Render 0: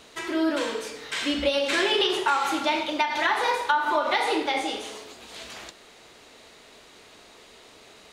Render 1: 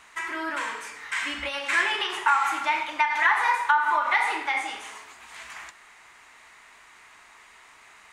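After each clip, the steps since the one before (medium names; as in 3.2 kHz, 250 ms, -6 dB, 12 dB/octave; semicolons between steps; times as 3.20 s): graphic EQ 125/250/500/1000/2000/4000/8000 Hz -4/-5/-11/+10/+11/-7/+6 dB; trim -6 dB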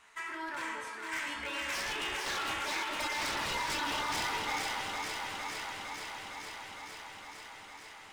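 chord resonator D2 minor, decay 0.24 s; wavefolder -33.5 dBFS; echo whose repeats swap between lows and highs 229 ms, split 1 kHz, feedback 88%, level -2.5 dB; trim +1.5 dB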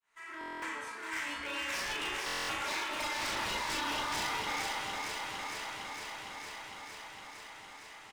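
fade-in on the opening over 0.51 s; doubling 38 ms -4 dB; buffer glitch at 0.39/2.26 s, samples 1024, times 9; trim -2 dB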